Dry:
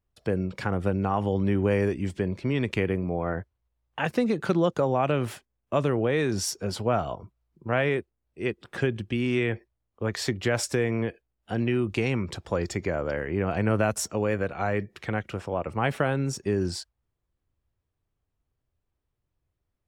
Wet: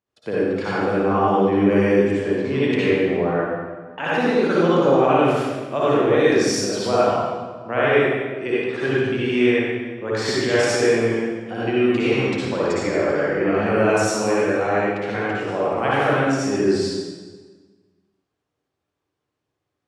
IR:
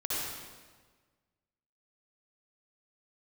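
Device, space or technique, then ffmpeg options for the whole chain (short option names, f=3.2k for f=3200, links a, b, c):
supermarket ceiling speaker: -filter_complex "[0:a]highpass=210,lowpass=6.8k[a];[1:a]atrim=start_sample=2205[b];[a][b]afir=irnorm=-1:irlink=0,volume=2.5dB"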